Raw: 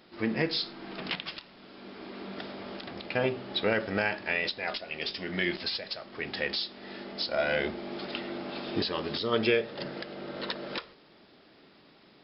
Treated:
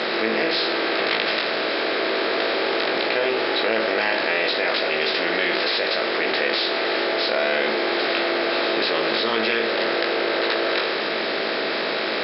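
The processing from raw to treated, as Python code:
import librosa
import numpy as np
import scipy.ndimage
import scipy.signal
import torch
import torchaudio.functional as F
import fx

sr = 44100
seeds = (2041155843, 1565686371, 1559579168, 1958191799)

y = fx.bin_compress(x, sr, power=0.4)
y = scipy.signal.sosfilt(scipy.signal.butter(2, 400.0, 'highpass', fs=sr, output='sos'), y)
y = fx.air_absorb(y, sr, metres=100.0)
y = fx.doubler(y, sr, ms=18.0, db=-3.5)
y = fx.env_flatten(y, sr, amount_pct=70)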